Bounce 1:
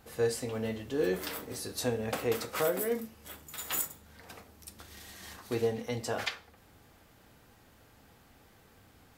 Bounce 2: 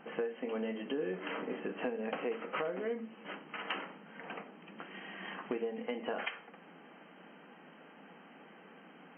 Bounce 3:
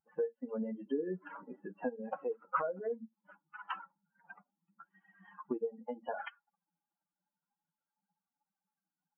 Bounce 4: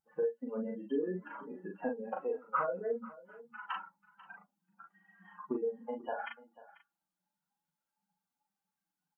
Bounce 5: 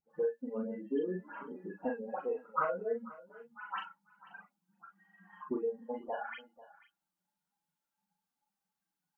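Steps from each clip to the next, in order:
FFT band-pass 160–3200 Hz; compression 8:1, threshold -40 dBFS, peak gain reduction 15.5 dB; trim +6.5 dB
expander on every frequency bin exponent 3; resonant high shelf 1.7 kHz -8.5 dB, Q 3; trim +5 dB
doubling 39 ms -3 dB; delay 491 ms -19 dB
phase dispersion highs, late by 110 ms, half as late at 2 kHz

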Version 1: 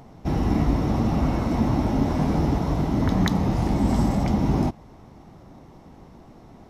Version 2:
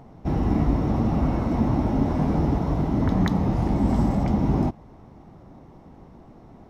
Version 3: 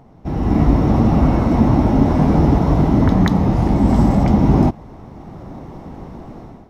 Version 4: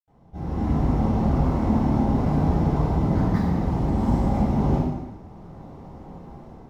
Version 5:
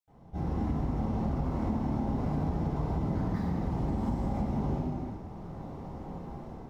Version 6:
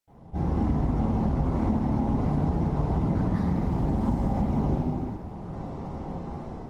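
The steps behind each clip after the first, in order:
treble shelf 2.5 kHz -9.5 dB
level rider gain up to 13.5 dB
median filter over 15 samples; reverberation RT60 1.1 s, pre-delay 76 ms; trim -6 dB
compression 5:1, threshold -28 dBFS, peak gain reduction 12 dB
wow and flutter 27 cents; trim +6 dB; Opus 24 kbps 48 kHz

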